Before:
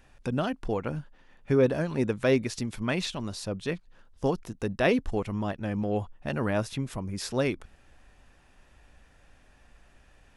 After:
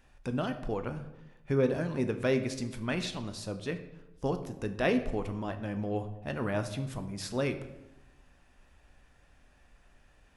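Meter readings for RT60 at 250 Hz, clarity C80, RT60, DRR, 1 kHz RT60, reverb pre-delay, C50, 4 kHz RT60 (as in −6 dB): 1.1 s, 13.5 dB, 1.0 s, 7.5 dB, 0.95 s, 9 ms, 11.0 dB, 0.60 s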